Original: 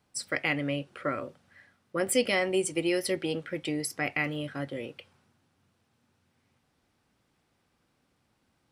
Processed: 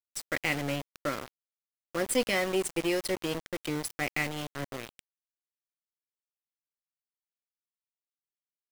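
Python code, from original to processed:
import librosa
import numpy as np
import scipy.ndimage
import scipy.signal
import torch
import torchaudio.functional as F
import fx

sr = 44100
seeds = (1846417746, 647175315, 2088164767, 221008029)

y = fx.diode_clip(x, sr, knee_db=-21.5)
y = np.where(np.abs(y) >= 10.0 ** (-32.0 / 20.0), y, 0.0)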